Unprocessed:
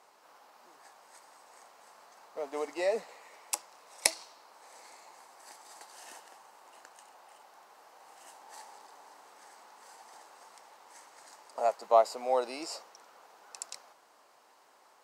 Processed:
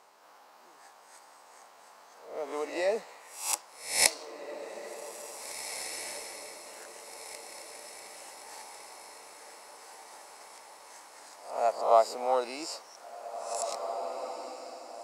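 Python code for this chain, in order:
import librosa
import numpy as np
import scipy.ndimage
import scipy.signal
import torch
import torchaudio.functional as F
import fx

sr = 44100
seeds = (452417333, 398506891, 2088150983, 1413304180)

y = fx.spec_swells(x, sr, rise_s=0.5)
y = fx.echo_diffused(y, sr, ms=1893, feedback_pct=50, wet_db=-9.0)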